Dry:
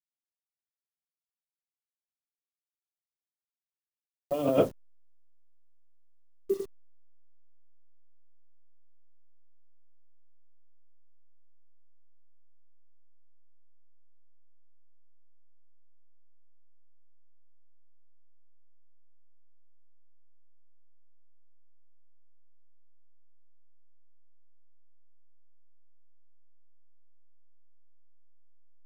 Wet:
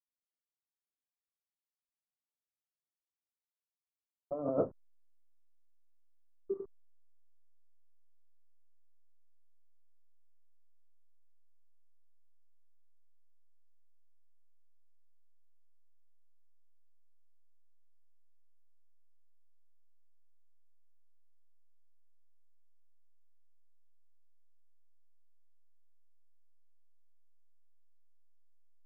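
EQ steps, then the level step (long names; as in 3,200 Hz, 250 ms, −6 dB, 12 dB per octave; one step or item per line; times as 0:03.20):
Chebyshev low-pass filter 1,300 Hz, order 4
−7.5 dB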